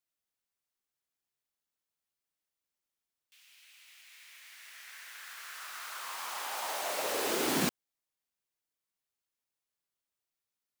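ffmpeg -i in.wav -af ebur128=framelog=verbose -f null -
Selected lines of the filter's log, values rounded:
Integrated loudness:
  I:         -34.4 LUFS
  Threshold: -46.5 LUFS
Loudness range:
  LRA:        19.3 LU
  Threshold: -58.3 LUFS
  LRA low:   -53.9 LUFS
  LRA high:  -34.6 LUFS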